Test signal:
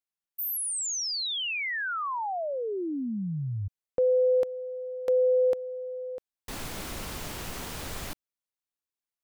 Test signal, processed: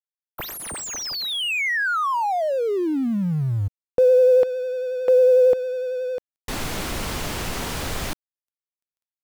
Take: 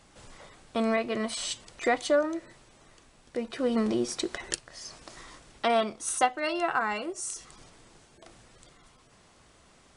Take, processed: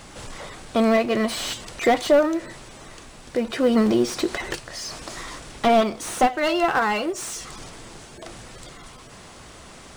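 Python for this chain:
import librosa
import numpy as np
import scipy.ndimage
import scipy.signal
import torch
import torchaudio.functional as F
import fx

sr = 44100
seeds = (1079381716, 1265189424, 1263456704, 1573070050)

y = fx.law_mismatch(x, sr, coded='mu')
y = fx.vibrato(y, sr, rate_hz=11.0, depth_cents=29.0)
y = fx.slew_limit(y, sr, full_power_hz=78.0)
y = y * librosa.db_to_amplitude(7.5)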